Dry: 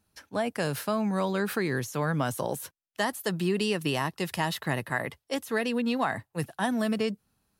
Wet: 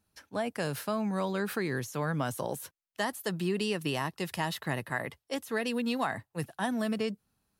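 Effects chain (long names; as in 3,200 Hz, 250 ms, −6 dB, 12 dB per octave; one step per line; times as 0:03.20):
0:05.66–0:06.07: high-shelf EQ 5,100 Hz +8 dB
level −3.5 dB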